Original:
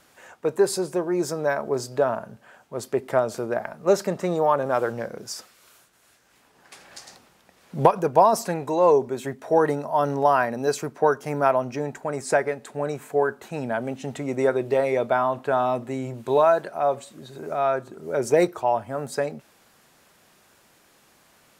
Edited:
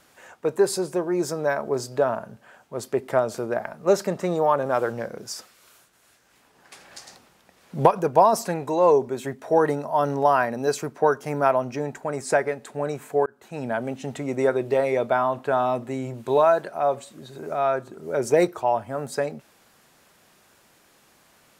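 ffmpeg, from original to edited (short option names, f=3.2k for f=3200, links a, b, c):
-filter_complex "[0:a]asplit=2[a][b];[a]atrim=end=13.26,asetpts=PTS-STARTPTS,afade=t=out:st=13.256:d=0.004:c=hsin[c];[b]atrim=start=13.26,asetpts=PTS-STARTPTS,afade=t=in:d=0.41[d];[c][d]concat=n=2:v=0:a=1"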